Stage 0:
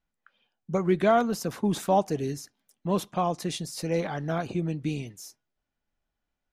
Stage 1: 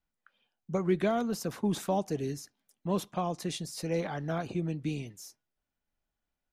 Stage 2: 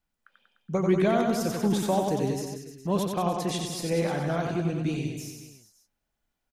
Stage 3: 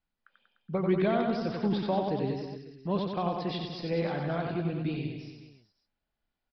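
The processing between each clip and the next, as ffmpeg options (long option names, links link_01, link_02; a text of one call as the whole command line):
ffmpeg -i in.wav -filter_complex "[0:a]acrossover=split=440|3000[link_01][link_02][link_03];[link_02]acompressor=threshold=-27dB:ratio=6[link_04];[link_01][link_04][link_03]amix=inputs=3:normalize=0,volume=-3.5dB" out.wav
ffmpeg -i in.wav -af "aecho=1:1:90|189|297.9|417.7|549.5:0.631|0.398|0.251|0.158|0.1,volume=3.5dB" out.wav
ffmpeg -i in.wav -af "aresample=11025,aresample=44100,volume=-3.5dB" out.wav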